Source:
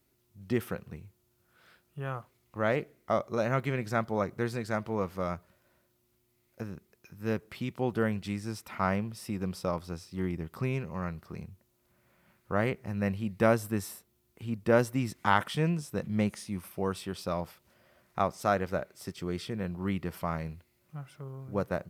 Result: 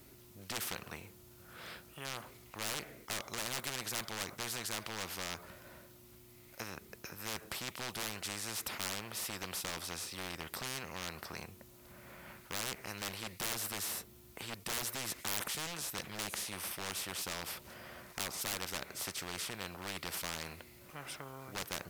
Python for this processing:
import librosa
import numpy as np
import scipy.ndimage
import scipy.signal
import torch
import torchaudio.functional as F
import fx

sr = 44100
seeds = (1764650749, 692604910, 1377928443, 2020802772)

y = 10.0 ** (-26.5 / 20.0) * (np.abs((x / 10.0 ** (-26.5 / 20.0) + 3.0) % 4.0 - 2.0) - 1.0)
y = fx.spectral_comp(y, sr, ratio=4.0)
y = y * librosa.db_to_amplitude(10.5)